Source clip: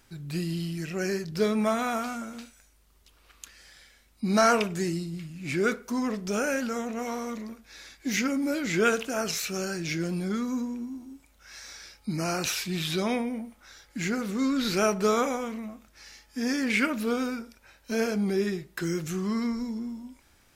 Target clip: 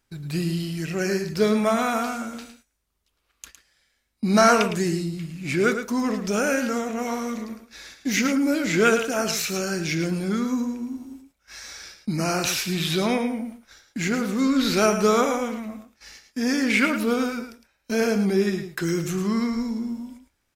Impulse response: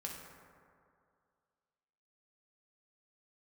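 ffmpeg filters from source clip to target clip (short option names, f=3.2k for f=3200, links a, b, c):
-filter_complex "[0:a]agate=range=-17dB:threshold=-49dB:ratio=16:detection=peak,asplit=2[a][b];[b]aecho=0:1:109:0.355[c];[a][c]amix=inputs=2:normalize=0,volume=4.5dB"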